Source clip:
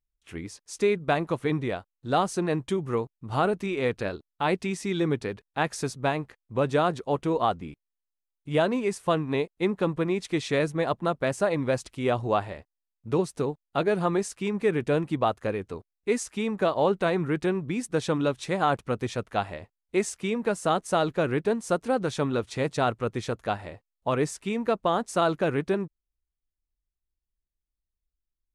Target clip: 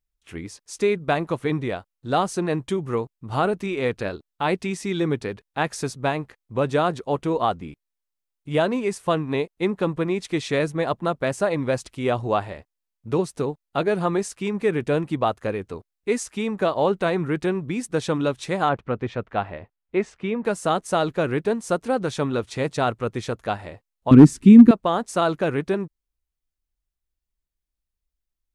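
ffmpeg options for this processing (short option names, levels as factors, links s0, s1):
-filter_complex "[0:a]asettb=1/sr,asplit=3[s0][s1][s2];[s0]atrim=end=18.694[s3];[s1]atrim=start=18.69:end=20.45,asetpts=PTS-STARTPTS,afade=t=in:d=0.004:c=qsin,afade=t=out:st=1.756:d=0.004:c=qsin,lowpass=2600[s4];[s2]atrim=start=20.446[s5];[s3][s4]acrossfade=d=0.004:c1=hsin:c2=qsin[s6];[s6][s5]acrossfade=d=0.004:c1=qsin:c2=hsin,asettb=1/sr,asplit=3[s7][s8][s9];[s7]atrim=end=24.114[s10];[s8]atrim=start=24.11:end=24.71,asetpts=PTS-STARTPTS,afade=t=in:d=0.004:c=qsin,afade=t=out:st=0.596:d=0.004:c=qsin,lowshelf=f=400:t=q:w=3:g=14[s11];[s9]atrim=start=24.706[s12];[s10][s11]acrossfade=d=0.004:c1=hsin:c2=qsin[s13];[s13][s12]acrossfade=d=0.004:c1=qsin:c2=hsin,volume=1.58,asoftclip=hard,volume=0.631,volume=1.33"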